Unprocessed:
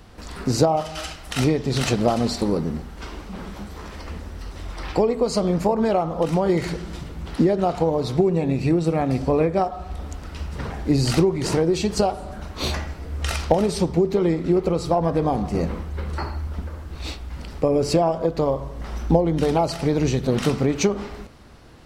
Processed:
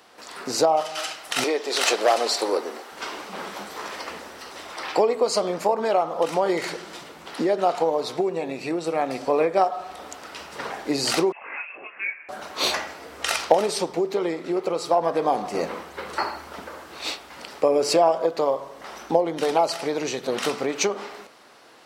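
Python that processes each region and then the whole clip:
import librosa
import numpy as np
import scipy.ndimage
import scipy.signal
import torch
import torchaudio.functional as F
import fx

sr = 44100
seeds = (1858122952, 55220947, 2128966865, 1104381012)

y = fx.chain(x, sr, fx.highpass(hz=330.0, slope=24),
    fx.clip_hard(threshold_db=-15.5), at=(1.44, 2.92))
y = fx.chain(y, sr, fx.highpass(hz=1100.0, slope=12),
    fx.freq_invert(carrier_hz=3000),
    fx.detune_double(cents=13), at=(11.32, 12.29))
y = fx.rider(y, sr, range_db=5, speed_s=2.0)
y = scipy.signal.sosfilt(scipy.signal.butter(2, 500.0, 'highpass', fs=sr, output='sos'), y)
y = y * 10.0 ** (2.5 / 20.0)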